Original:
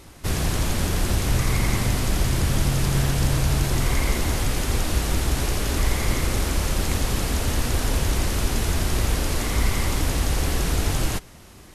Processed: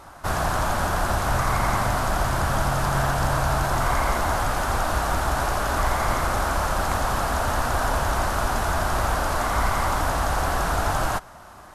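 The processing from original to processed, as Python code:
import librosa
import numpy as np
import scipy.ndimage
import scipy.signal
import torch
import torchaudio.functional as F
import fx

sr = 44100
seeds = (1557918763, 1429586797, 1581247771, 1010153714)

y = fx.band_shelf(x, sr, hz=980.0, db=14.5, octaves=1.7)
y = F.gain(torch.from_numpy(y), -4.0).numpy()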